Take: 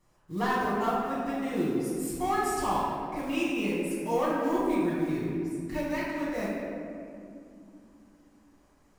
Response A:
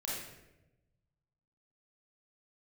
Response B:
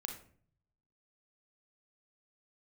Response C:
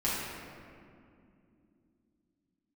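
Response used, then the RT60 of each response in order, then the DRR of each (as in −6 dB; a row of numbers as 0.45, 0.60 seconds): C; 0.95, 0.50, 2.6 seconds; −6.5, 4.0, −9.5 decibels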